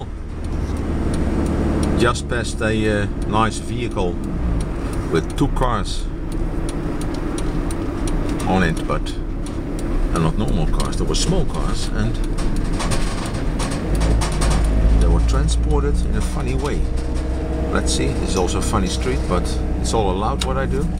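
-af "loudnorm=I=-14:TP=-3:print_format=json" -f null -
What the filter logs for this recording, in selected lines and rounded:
"input_i" : "-21.3",
"input_tp" : "-6.3",
"input_lra" : "3.4",
"input_thresh" : "-31.3",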